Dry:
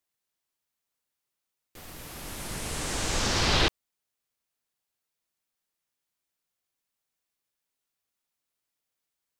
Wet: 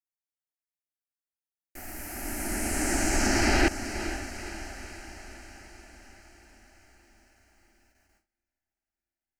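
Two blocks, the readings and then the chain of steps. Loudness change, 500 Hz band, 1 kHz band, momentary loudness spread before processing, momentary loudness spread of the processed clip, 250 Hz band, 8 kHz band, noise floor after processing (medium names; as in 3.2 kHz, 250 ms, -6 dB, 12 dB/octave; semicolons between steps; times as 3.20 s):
-1.0 dB, +3.0 dB, +1.5 dB, 18 LU, 21 LU, +7.5 dB, +3.0 dB, under -85 dBFS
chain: echo that smears into a reverb 487 ms, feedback 61%, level -13 dB; dynamic bell 290 Hz, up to +5 dB, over -48 dBFS, Q 1.2; gate with hold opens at -59 dBFS; static phaser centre 720 Hz, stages 8; in parallel at +1 dB: peak limiter -23.5 dBFS, peak gain reduction 10 dB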